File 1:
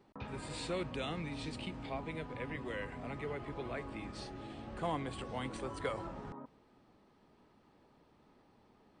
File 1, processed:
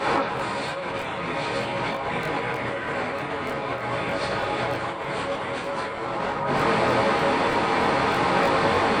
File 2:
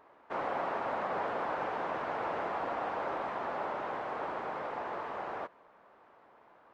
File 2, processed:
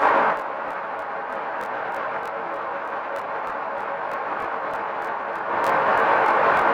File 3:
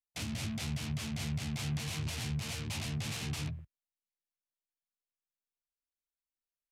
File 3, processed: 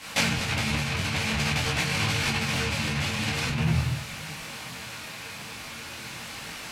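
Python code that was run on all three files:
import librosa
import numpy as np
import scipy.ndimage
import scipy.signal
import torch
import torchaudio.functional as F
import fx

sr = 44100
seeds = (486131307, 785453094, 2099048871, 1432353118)

p1 = fx.bin_compress(x, sr, power=0.4)
p2 = 10.0 ** (-34.0 / 20.0) * np.tanh(p1 / 10.0 ** (-34.0 / 20.0))
p3 = p1 + (p2 * 10.0 ** (-12.0 / 20.0))
p4 = fx.peak_eq(p3, sr, hz=1400.0, db=8.5, octaves=2.7)
p5 = fx.hum_notches(p4, sr, base_hz=50, count=6)
p6 = p5 + fx.echo_single(p5, sr, ms=356, db=-23.5, dry=0)
p7 = fx.room_shoebox(p6, sr, seeds[0], volume_m3=130.0, walls='mixed', distance_m=2.2)
p8 = fx.over_compress(p7, sr, threshold_db=-27.0, ratio=-1.0)
p9 = fx.highpass(p8, sr, hz=87.0, slope=6)
p10 = fx.buffer_crackle(p9, sr, first_s=0.35, period_s=0.31, block=1024, kind='repeat')
p11 = fx.detune_double(p10, sr, cents=16)
y = p11 * 10.0 ** (5.0 / 20.0)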